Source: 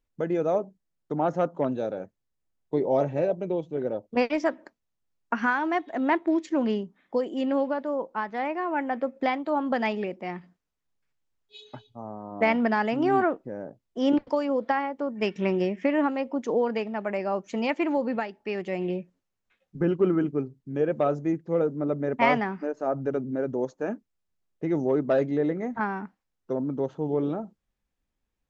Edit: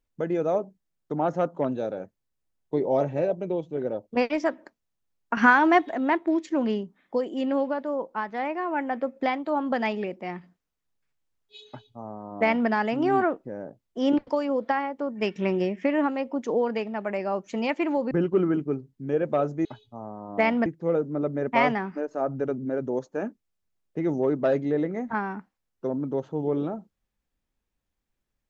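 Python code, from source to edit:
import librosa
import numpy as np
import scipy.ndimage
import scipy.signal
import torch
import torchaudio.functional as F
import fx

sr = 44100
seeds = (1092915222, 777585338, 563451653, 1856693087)

y = fx.edit(x, sr, fx.clip_gain(start_s=5.37, length_s=0.57, db=7.5),
    fx.duplicate(start_s=11.68, length_s=1.01, to_s=21.32),
    fx.cut(start_s=18.11, length_s=1.67), tone=tone)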